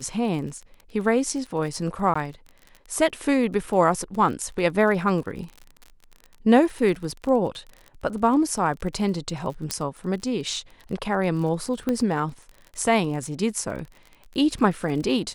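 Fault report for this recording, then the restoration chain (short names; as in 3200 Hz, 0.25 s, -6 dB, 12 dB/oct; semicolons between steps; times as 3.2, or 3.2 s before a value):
crackle 35/s -33 dBFS
2.14–2.15 gap 15 ms
9.71 pop -9 dBFS
11.89 pop -13 dBFS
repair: de-click; interpolate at 2.14, 15 ms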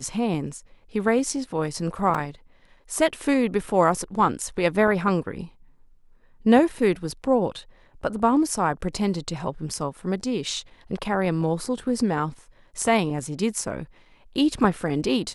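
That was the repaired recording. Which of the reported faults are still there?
none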